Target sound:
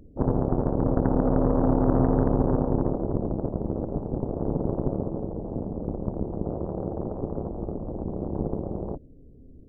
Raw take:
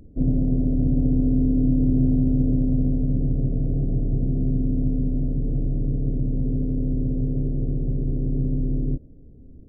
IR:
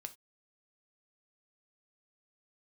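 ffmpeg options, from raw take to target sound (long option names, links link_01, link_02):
-af "equalizer=frequency=460:width_type=o:width=1.3:gain=5,aeval=exprs='0.398*(cos(1*acos(clip(val(0)/0.398,-1,1)))-cos(1*PI/2))+0.1*(cos(3*acos(clip(val(0)/0.398,-1,1)))-cos(3*PI/2))+0.0501*(cos(7*acos(clip(val(0)/0.398,-1,1)))-cos(7*PI/2))':channel_layout=same"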